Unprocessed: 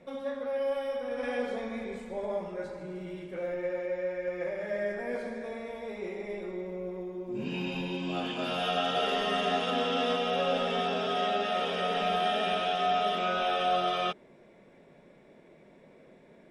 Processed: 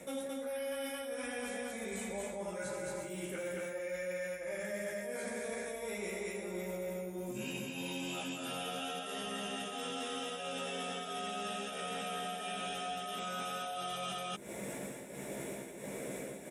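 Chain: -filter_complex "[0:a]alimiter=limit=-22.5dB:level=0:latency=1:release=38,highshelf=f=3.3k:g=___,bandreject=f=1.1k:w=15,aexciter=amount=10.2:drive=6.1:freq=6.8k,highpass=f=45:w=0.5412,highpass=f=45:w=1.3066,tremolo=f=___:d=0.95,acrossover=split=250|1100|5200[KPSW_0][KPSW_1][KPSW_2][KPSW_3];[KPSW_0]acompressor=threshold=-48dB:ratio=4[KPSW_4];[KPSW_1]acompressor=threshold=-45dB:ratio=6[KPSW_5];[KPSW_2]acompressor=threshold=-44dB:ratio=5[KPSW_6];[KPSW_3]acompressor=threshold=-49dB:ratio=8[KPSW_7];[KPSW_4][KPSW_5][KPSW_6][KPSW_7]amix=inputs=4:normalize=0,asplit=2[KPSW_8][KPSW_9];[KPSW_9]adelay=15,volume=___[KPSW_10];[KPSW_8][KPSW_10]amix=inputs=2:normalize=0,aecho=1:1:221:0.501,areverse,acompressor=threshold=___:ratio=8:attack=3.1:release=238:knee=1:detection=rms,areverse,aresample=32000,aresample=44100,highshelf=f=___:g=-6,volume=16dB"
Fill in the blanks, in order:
7.5, 1.5, -4.5dB, -51dB, 7.4k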